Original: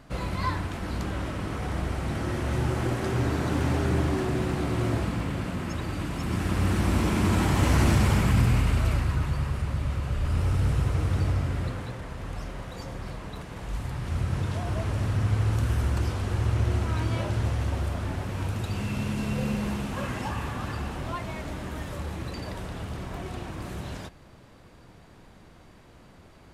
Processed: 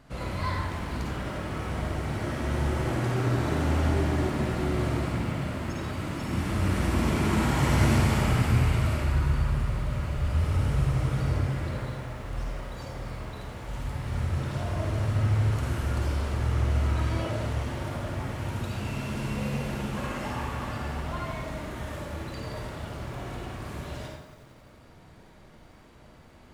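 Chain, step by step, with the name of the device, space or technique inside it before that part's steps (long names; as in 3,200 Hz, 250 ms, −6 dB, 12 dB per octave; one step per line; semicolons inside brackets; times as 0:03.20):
bathroom (convolution reverb RT60 0.85 s, pre-delay 44 ms, DRR −2.5 dB)
feedback echo at a low word length 90 ms, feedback 80%, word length 8 bits, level −15 dB
level −4.5 dB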